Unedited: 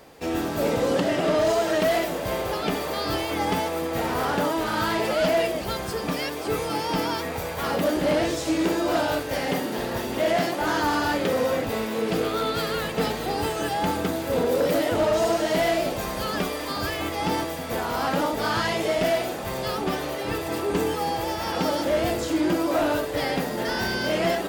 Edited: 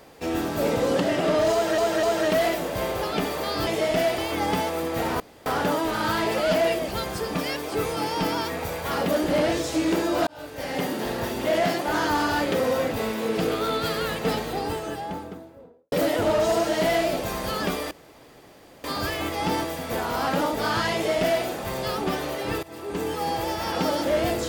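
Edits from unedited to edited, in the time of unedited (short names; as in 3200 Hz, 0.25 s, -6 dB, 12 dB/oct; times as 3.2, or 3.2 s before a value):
1.53–1.78 loop, 3 plays
4.19 insert room tone 0.26 s
9–9.64 fade in
12.91–14.65 studio fade out
16.64 insert room tone 0.93 s
18.74–19.25 copy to 3.17
20.43–21.12 fade in, from -18.5 dB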